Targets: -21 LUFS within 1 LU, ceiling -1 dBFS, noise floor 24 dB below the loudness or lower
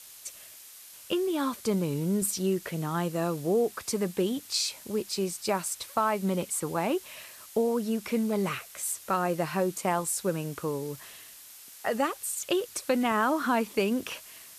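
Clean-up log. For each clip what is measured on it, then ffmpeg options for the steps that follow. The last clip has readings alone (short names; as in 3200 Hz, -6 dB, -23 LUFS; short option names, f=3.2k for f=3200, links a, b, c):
noise floor -49 dBFS; noise floor target -54 dBFS; loudness -29.5 LUFS; peak -13.5 dBFS; loudness target -21.0 LUFS
-> -af "afftdn=nr=6:nf=-49"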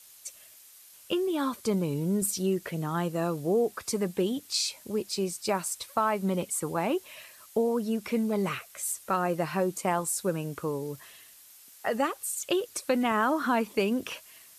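noise floor -53 dBFS; noise floor target -54 dBFS
-> -af "afftdn=nr=6:nf=-53"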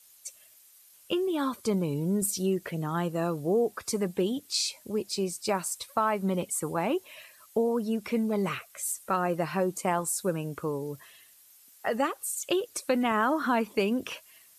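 noise floor -57 dBFS; loudness -29.5 LUFS; peak -14.0 dBFS; loudness target -21.0 LUFS
-> -af "volume=8.5dB"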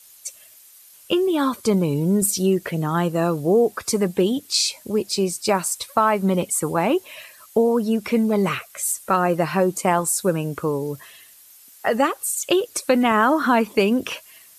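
loudness -21.0 LUFS; peak -5.5 dBFS; noise floor -49 dBFS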